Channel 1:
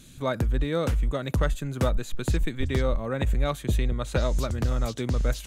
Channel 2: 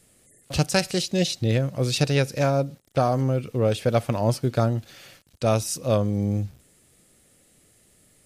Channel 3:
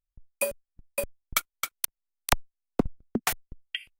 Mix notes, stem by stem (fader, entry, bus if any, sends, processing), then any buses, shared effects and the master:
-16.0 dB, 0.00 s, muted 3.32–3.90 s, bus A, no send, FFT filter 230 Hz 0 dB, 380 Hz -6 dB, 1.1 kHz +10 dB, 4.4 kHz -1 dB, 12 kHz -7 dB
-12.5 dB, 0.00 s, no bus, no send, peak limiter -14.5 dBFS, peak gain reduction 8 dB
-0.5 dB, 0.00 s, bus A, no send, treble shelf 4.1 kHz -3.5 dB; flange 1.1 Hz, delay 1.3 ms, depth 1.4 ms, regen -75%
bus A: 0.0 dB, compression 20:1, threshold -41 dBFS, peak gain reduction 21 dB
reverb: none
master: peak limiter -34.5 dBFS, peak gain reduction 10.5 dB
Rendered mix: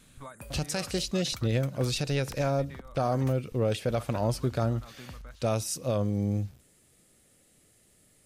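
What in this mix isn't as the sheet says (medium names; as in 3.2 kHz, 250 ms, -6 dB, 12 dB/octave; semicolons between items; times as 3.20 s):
stem 1 -16.0 dB -> -9.0 dB; stem 2 -12.5 dB -> -4.0 dB; master: missing peak limiter -34.5 dBFS, peak gain reduction 10.5 dB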